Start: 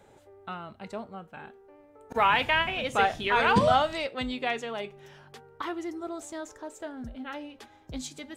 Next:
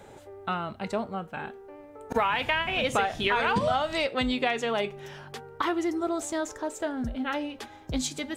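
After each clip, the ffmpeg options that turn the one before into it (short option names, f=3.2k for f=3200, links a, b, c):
-af "acompressor=threshold=-30dB:ratio=10,volume=8dB"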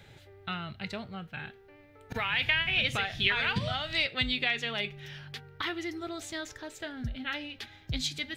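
-af "equalizer=f=125:t=o:w=1:g=7,equalizer=f=250:t=o:w=1:g=-7,equalizer=f=500:t=o:w=1:g=-8,equalizer=f=1k:t=o:w=1:g=-11,equalizer=f=2k:t=o:w=1:g=5,equalizer=f=4k:t=o:w=1:g=7,equalizer=f=8k:t=o:w=1:g=-9,volume=-1.5dB"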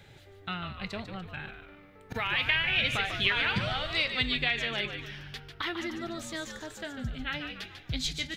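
-filter_complex "[0:a]asplit=6[a][b][c][d][e][f];[b]adelay=146,afreqshift=-100,volume=-8dB[g];[c]adelay=292,afreqshift=-200,volume=-15.1dB[h];[d]adelay=438,afreqshift=-300,volume=-22.3dB[i];[e]adelay=584,afreqshift=-400,volume=-29.4dB[j];[f]adelay=730,afreqshift=-500,volume=-36.5dB[k];[a][g][h][i][j][k]amix=inputs=6:normalize=0"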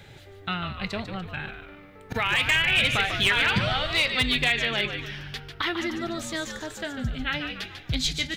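-af "asoftclip=type=hard:threshold=-20.5dB,volume=6dB"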